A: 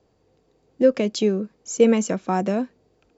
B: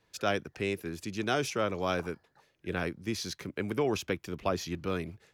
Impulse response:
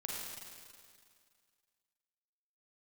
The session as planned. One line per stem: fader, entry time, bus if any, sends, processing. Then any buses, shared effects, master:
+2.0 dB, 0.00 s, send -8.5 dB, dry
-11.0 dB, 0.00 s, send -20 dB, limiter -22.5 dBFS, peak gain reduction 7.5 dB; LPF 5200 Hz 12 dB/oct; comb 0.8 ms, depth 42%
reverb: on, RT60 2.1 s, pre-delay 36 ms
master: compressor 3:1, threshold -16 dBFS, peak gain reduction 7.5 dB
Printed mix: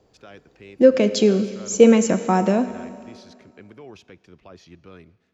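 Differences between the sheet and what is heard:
stem B: missing comb 0.8 ms, depth 42%; master: missing compressor 3:1, threshold -16 dBFS, peak gain reduction 7.5 dB

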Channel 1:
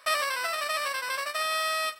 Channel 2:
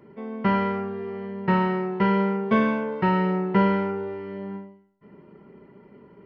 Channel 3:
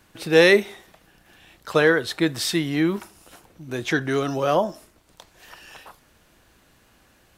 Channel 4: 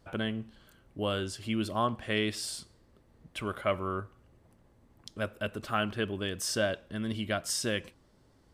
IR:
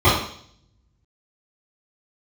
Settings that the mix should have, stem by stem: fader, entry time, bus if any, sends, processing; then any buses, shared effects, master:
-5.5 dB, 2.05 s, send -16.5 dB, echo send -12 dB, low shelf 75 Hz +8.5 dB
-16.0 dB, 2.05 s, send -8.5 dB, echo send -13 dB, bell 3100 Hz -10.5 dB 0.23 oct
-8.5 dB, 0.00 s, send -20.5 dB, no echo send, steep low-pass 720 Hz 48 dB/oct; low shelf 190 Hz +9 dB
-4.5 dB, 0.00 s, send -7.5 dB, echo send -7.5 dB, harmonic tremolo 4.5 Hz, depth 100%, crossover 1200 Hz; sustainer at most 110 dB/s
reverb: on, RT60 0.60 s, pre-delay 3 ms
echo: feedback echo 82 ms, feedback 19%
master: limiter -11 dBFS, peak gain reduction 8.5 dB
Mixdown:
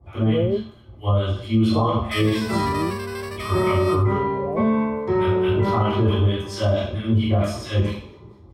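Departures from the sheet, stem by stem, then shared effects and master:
stem 1: send off; stem 3: send off

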